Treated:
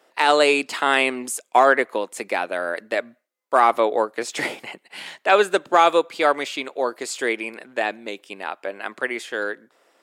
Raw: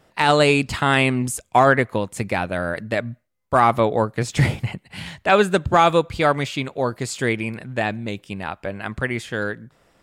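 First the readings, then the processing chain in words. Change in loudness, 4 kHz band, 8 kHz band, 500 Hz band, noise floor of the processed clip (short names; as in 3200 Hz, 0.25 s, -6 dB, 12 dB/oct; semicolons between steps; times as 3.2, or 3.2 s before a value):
-0.5 dB, 0.0 dB, 0.0 dB, 0.0 dB, -68 dBFS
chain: HPF 320 Hz 24 dB/oct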